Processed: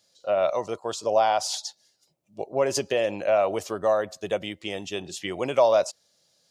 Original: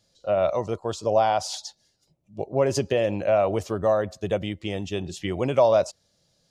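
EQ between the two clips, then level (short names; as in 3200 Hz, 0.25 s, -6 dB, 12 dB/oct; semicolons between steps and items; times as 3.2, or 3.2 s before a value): HPF 510 Hz 6 dB/oct; high shelf 7500 Hz +4.5 dB; +1.5 dB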